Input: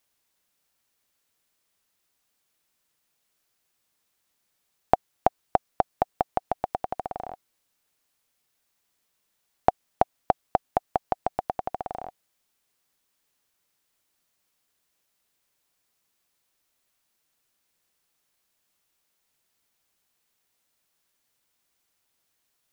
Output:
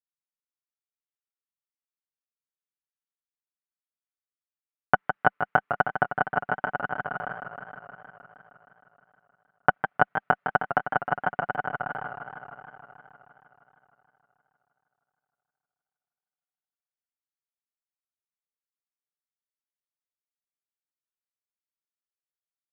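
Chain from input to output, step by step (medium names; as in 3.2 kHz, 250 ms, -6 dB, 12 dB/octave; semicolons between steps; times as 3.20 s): comb filter that takes the minimum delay 6.8 ms; expander -52 dBFS; cabinet simulation 200–2300 Hz, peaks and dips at 200 Hz +3 dB, 300 Hz -9 dB, 480 Hz -4 dB, 700 Hz -5 dB, 1.3 kHz +6 dB, 1.9 kHz +3 dB; modulated delay 156 ms, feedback 76%, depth 99 cents, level -8.5 dB; trim +4.5 dB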